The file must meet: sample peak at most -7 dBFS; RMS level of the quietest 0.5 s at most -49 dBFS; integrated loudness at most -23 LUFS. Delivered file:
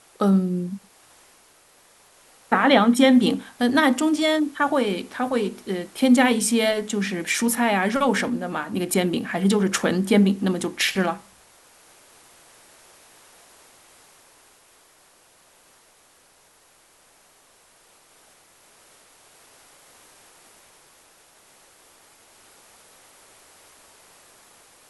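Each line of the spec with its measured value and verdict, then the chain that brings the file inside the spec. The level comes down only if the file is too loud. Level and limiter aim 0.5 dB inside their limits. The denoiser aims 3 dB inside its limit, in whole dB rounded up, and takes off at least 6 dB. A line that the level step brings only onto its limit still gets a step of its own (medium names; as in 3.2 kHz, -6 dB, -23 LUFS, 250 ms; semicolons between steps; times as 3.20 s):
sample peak -4.5 dBFS: fail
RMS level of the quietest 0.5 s -57 dBFS: pass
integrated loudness -21.0 LUFS: fail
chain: trim -2.5 dB; peak limiter -7.5 dBFS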